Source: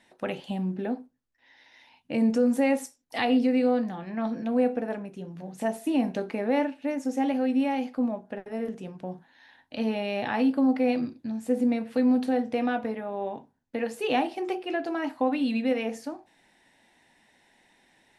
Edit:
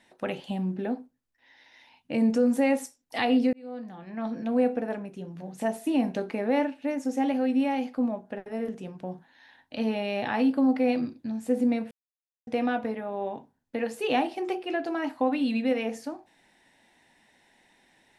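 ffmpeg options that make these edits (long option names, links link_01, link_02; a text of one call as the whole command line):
ffmpeg -i in.wav -filter_complex "[0:a]asplit=4[link_01][link_02][link_03][link_04];[link_01]atrim=end=3.53,asetpts=PTS-STARTPTS,afade=type=out:start_time=3.526:duration=0.004:curve=hsin[link_05];[link_02]atrim=start=3.53:end=11.91,asetpts=PTS-STARTPTS,afade=type=in:duration=0.98,afade=type=out:start_time=8.376:duration=0.004:curve=hsin[link_06];[link_03]atrim=start=11.91:end=12.47,asetpts=PTS-STARTPTS,volume=0[link_07];[link_04]atrim=start=12.47,asetpts=PTS-STARTPTS,afade=type=in:duration=0.004:curve=hsin[link_08];[link_05][link_06][link_07][link_08]concat=n=4:v=0:a=1" out.wav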